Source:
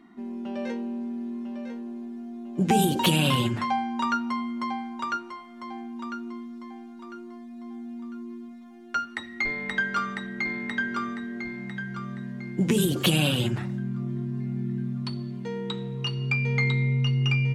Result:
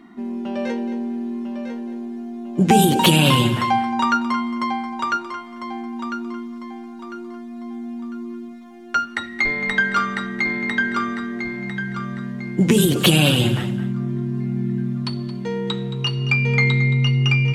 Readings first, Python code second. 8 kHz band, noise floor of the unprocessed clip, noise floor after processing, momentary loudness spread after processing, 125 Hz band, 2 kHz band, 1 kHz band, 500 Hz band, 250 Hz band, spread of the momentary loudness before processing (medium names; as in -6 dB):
+7.5 dB, -44 dBFS, -36 dBFS, 17 LU, +6.5 dB, +8.0 dB, +8.0 dB, +7.5 dB, +7.0 dB, 17 LU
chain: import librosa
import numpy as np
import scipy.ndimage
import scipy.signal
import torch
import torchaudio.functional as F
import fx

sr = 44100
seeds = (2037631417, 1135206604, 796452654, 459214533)

y = fx.echo_feedback(x, sr, ms=222, feedback_pct=17, wet_db=-13.5)
y = y * 10.0 ** (7.5 / 20.0)